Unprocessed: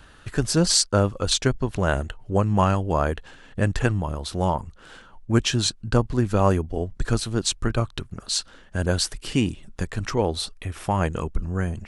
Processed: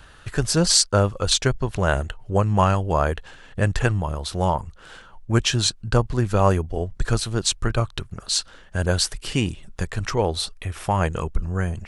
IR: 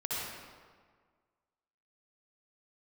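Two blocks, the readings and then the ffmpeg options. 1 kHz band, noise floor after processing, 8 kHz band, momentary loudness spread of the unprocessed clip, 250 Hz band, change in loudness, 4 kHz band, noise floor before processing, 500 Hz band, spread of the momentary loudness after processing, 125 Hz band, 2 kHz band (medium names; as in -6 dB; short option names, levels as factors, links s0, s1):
+2.0 dB, -47 dBFS, +2.5 dB, 10 LU, -1.5 dB, +1.5 dB, +2.5 dB, -49 dBFS, +1.0 dB, 10 LU, +1.5 dB, +2.5 dB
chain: -af "equalizer=f=260:t=o:w=0.91:g=-6,volume=1.33"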